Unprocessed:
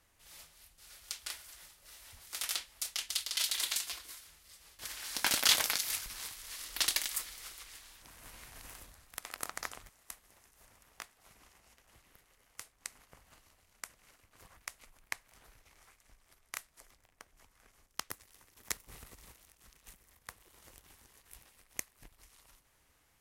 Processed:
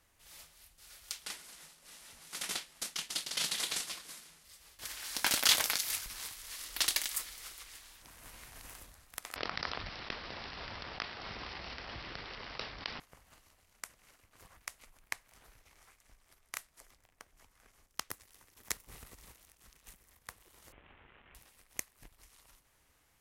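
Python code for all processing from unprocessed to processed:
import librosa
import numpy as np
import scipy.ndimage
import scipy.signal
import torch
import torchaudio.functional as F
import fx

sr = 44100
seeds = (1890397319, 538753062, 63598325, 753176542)

y = fx.chain(x, sr, fx.cvsd(bps=64000),
    fx.low_shelf_res(hz=130.0, db=-6.5, q=3.0), at=(1.22, 4.45))
y = fx.chain(y, sr, fx.highpass(hz=44.0, slope=12),
    fx.resample_bad(factor=4, down='none', up='filtered'),
    fx.env_flatten(amount_pct=70), at=(9.36, 13.0))
y = fx.chain(y, sr, fx.cvsd(bps=16000),
    fx.env_flatten(amount_pct=50), at=(20.72, 21.35))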